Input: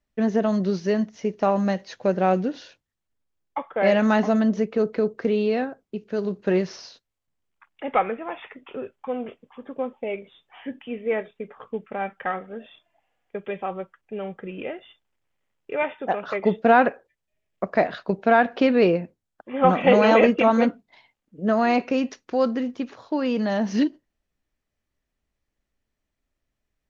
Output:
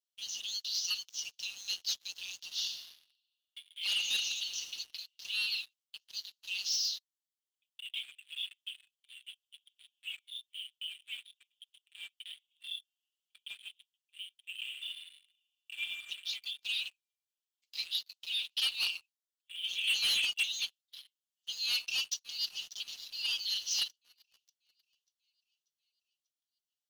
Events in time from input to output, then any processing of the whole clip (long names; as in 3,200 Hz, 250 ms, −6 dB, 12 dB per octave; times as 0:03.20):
0:02.40–0:04.62: thrown reverb, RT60 2.4 s, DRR 4 dB
0:14.63–0:15.82: thrown reverb, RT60 2.1 s, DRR 0.5 dB
0:21.65–0:22.75: delay throw 590 ms, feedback 65%, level −17 dB
whole clip: Butterworth high-pass 2,900 Hz 72 dB per octave; comb filter 5.5 ms, depth 74%; leveller curve on the samples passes 3; level −1 dB